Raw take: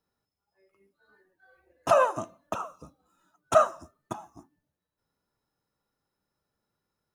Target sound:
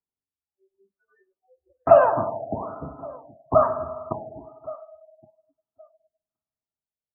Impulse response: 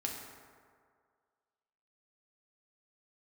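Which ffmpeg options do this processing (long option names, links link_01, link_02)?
-filter_complex "[0:a]bandreject=frequency=530:width=12,acrossover=split=870[link_01][link_02];[link_02]alimiter=level_in=2dB:limit=-24dB:level=0:latency=1:release=42,volume=-2dB[link_03];[link_01][link_03]amix=inputs=2:normalize=0,highshelf=frequency=3700:gain=-11.5,aecho=1:1:1119|2238:0.0668|0.0114,aphaser=in_gain=1:out_gain=1:delay=2.1:decay=0.43:speed=0.34:type=triangular,bandreject=frequency=64.28:width_type=h:width=4,bandreject=frequency=128.56:width_type=h:width=4,bandreject=frequency=192.84:width_type=h:width=4,asplit=2[link_04][link_05];[1:a]atrim=start_sample=2205,lowpass=2300[link_06];[link_05][link_06]afir=irnorm=-1:irlink=0,volume=-3dB[link_07];[link_04][link_07]amix=inputs=2:normalize=0,afftdn=noise_reduction=29:noise_floor=-47,afftfilt=real='re*lt(b*sr/1024,810*pow(3200/810,0.5+0.5*sin(2*PI*1.1*pts/sr)))':imag='im*lt(b*sr/1024,810*pow(3200/810,0.5+0.5*sin(2*PI*1.1*pts/sr)))':win_size=1024:overlap=0.75,volume=4dB"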